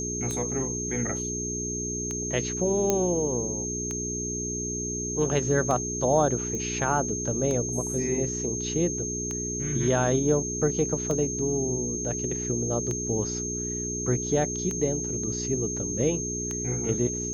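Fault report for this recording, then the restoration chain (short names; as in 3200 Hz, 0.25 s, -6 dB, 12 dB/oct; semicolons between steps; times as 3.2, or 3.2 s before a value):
hum 60 Hz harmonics 7 -34 dBFS
tick 33 1/3 rpm -18 dBFS
tone 6400 Hz -31 dBFS
2.9 pop -9 dBFS
6.55 pop -21 dBFS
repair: de-click; de-hum 60 Hz, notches 7; notch 6400 Hz, Q 30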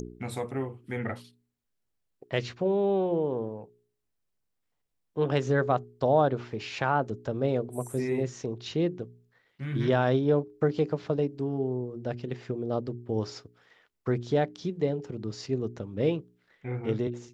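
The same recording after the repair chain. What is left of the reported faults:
none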